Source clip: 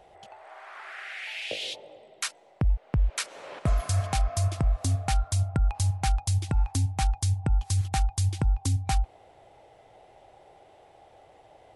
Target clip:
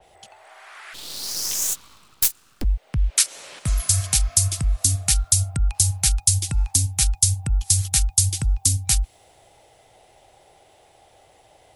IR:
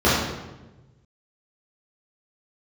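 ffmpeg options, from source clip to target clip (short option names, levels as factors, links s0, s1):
-filter_complex "[0:a]lowshelf=f=160:g=5.5,acrossover=split=290|1300|1500[s0][s1][s2][s3];[s1]acompressor=threshold=0.00501:ratio=6[s4];[s0][s4][s2][s3]amix=inputs=4:normalize=0,asplit=3[s5][s6][s7];[s5]afade=t=out:st=0.93:d=0.02[s8];[s6]aeval=exprs='abs(val(0))':c=same,afade=t=in:st=0.93:d=0.02,afade=t=out:st=2.63:d=0.02[s9];[s7]afade=t=in:st=2.63:d=0.02[s10];[s8][s9][s10]amix=inputs=3:normalize=0,crystalizer=i=5:c=0,adynamicequalizer=threshold=0.0141:dfrequency=3800:dqfactor=0.7:tfrequency=3800:tqfactor=0.7:attack=5:release=100:ratio=0.375:range=3:mode=boostabove:tftype=highshelf,volume=0.794"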